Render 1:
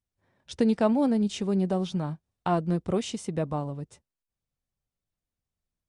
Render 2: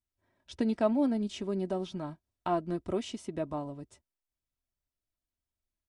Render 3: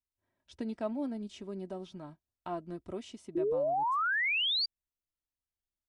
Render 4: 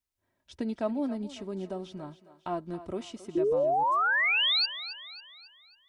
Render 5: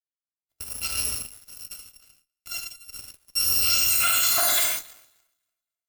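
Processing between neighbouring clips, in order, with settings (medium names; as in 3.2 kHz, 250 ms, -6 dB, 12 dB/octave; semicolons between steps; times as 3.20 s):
comb 3.1 ms, depth 53%; dynamic bell 7.7 kHz, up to -5 dB, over -50 dBFS, Q 0.82; trim -5.5 dB
painted sound rise, 3.35–4.66 s, 330–4800 Hz -22 dBFS; trim -8 dB
thinning echo 273 ms, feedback 47%, high-pass 370 Hz, level -13.5 dB; trim +4.5 dB
bit-reversed sample order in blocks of 256 samples; gated-style reverb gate 180 ms flat, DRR -2.5 dB; Chebyshev shaper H 6 -34 dB, 7 -17 dB, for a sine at -14 dBFS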